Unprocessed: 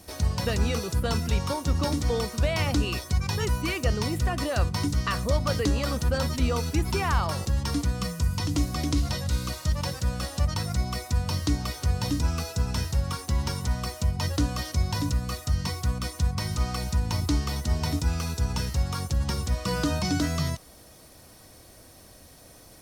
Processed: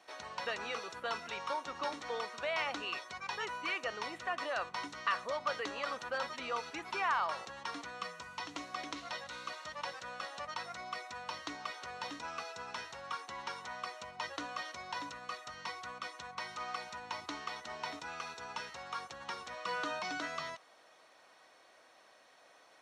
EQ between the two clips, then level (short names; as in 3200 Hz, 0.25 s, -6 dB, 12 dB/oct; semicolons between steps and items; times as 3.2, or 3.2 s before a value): HPF 990 Hz 12 dB/oct; tape spacing loss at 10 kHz 28 dB; notch 4900 Hz, Q 7.9; +2.5 dB